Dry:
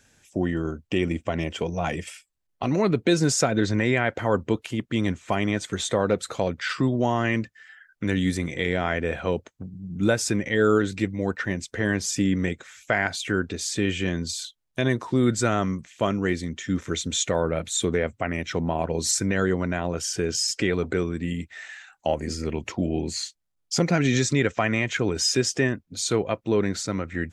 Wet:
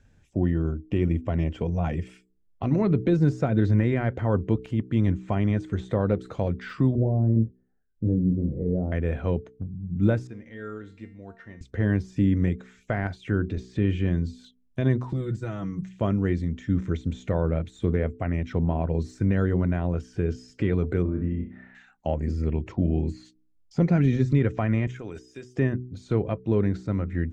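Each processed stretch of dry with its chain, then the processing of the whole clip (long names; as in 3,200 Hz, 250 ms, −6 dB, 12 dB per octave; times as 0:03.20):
0:06.95–0:08.92: Chebyshev low-pass filter 540 Hz, order 3 + double-tracking delay 27 ms −5 dB
0:10.27–0:11.61: de-essing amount 90% + low-shelf EQ 310 Hz −9 dB + tuned comb filter 230 Hz, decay 0.47 s, mix 80%
0:13.57–0:14.13: high-frequency loss of the air 59 metres + upward compression, threshold −29 dBFS
0:15.09–0:15.89: high-shelf EQ 5,300 Hz +10.5 dB + comb filter 6.2 ms, depth 73% + downward compressor, threshold −26 dBFS
0:21.02–0:21.75: low-pass filter 1,300 Hz + double-tracking delay 27 ms −13 dB + flutter between parallel walls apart 5.5 metres, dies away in 0.45 s
0:24.87–0:25.56: RIAA equalisation recording + downward compressor 12 to 1, threshold −29 dBFS + Butterworth band-reject 4,200 Hz, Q 7.9
whole clip: de-essing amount 90%; RIAA equalisation playback; hum removal 62.49 Hz, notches 7; level −6 dB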